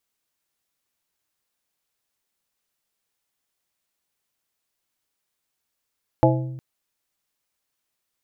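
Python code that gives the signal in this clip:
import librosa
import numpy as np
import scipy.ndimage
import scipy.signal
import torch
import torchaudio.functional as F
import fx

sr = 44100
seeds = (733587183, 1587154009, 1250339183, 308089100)

y = fx.strike_glass(sr, length_s=0.36, level_db=-16, body='plate', hz=130.0, decay_s=1.19, tilt_db=0.0, modes=5)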